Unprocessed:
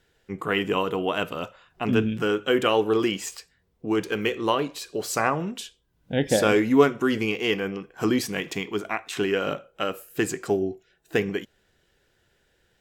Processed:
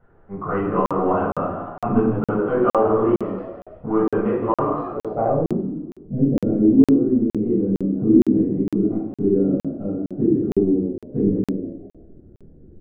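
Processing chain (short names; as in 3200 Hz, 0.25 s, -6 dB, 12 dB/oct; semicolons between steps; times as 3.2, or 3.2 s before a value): AGC gain up to 11.5 dB; frequency-shifting echo 0.161 s, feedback 38%, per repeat +70 Hz, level -12 dB; power-law curve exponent 0.7; reverb RT60 0.65 s, pre-delay 9 ms, DRR -5.5 dB; low-pass sweep 1100 Hz -> 290 Hz, 4.97–5.73; tape spacing loss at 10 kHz 39 dB; crackling interface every 0.46 s, samples 2048, zero, from 0.86; gain -15.5 dB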